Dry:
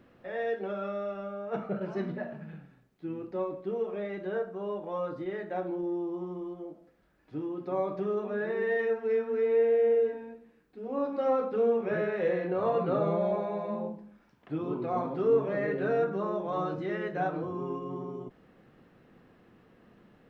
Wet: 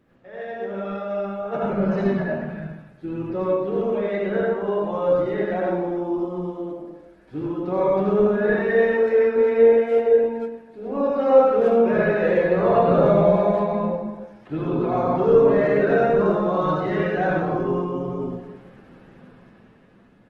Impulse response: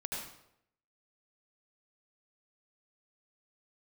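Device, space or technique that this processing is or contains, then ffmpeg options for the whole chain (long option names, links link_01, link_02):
speakerphone in a meeting room: -filter_complex "[1:a]atrim=start_sample=2205[link_01];[0:a][link_01]afir=irnorm=-1:irlink=0,asplit=2[link_02][link_03];[link_03]adelay=290,highpass=300,lowpass=3400,asoftclip=type=hard:threshold=-21.5dB,volume=-14dB[link_04];[link_02][link_04]amix=inputs=2:normalize=0,dynaudnorm=framelen=110:gausssize=21:maxgain=9dB" -ar 48000 -c:a libopus -b:a 16k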